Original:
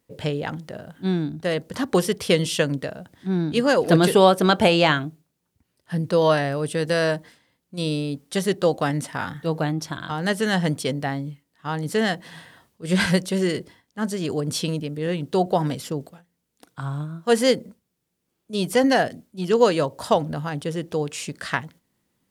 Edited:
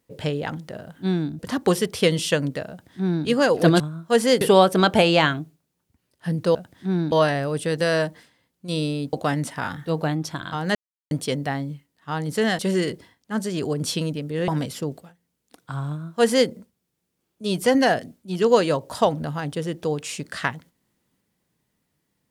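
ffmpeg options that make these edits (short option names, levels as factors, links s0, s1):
-filter_complex "[0:a]asplit=11[s0][s1][s2][s3][s4][s5][s6][s7][s8][s9][s10];[s0]atrim=end=1.392[s11];[s1]atrim=start=1.658:end=4.072[s12];[s2]atrim=start=16.968:end=17.582[s13];[s3]atrim=start=4.068:end=6.212[s14];[s4]atrim=start=2.958:end=3.532[s15];[s5]atrim=start=6.208:end=8.222[s16];[s6]atrim=start=8.698:end=10.32,asetpts=PTS-STARTPTS,afade=t=out:st=1.618:d=0.004:c=hsin[s17];[s7]atrim=start=10.32:end=10.68,asetpts=PTS-STARTPTS,volume=0[s18];[s8]atrim=start=10.68:end=12.162,asetpts=PTS-STARTPTS,afade=t=in:d=0.004:c=hsin[s19];[s9]atrim=start=13.258:end=15.152[s20];[s10]atrim=start=15.568[s21];[s11][s12]acrossfade=d=0.004:c1=hsin:c2=hsin[s22];[s22][s13]acrossfade=d=0.004:c1=hsin:c2=hsin[s23];[s23][s14]acrossfade=d=0.004:c1=hsin:c2=hsin[s24];[s24][s15]acrossfade=d=0.004:c1=hsin:c2=hsin[s25];[s25][s16]acrossfade=d=0.004:c1=hsin:c2=hsin[s26];[s17][s18][s19]concat=n=3:v=0:a=1[s27];[s26][s27]acrossfade=d=0.004:c1=hsin:c2=hsin[s28];[s28][s20]acrossfade=d=0.004:c1=hsin:c2=hsin[s29];[s29][s21]acrossfade=d=0.004:c1=hsin:c2=hsin"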